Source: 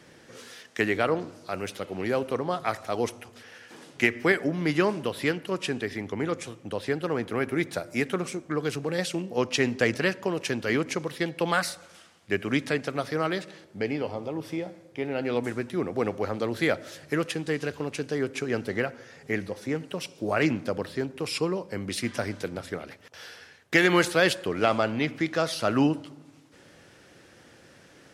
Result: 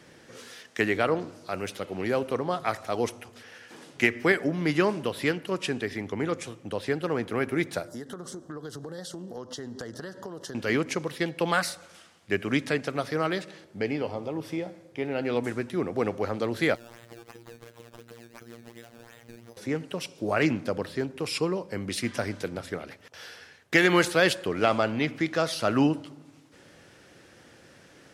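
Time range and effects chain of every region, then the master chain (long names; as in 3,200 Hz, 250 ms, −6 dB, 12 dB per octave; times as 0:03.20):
0:07.88–0:10.55: Butterworth band-reject 2,400 Hz, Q 1.5 + downward compressor, threshold −35 dBFS + one half of a high-frequency compander encoder only
0:16.75–0:19.57: sample-and-hold swept by an LFO 15× 2.8 Hz + downward compressor 8 to 1, threshold −41 dBFS + phases set to zero 117 Hz
whole clip: no processing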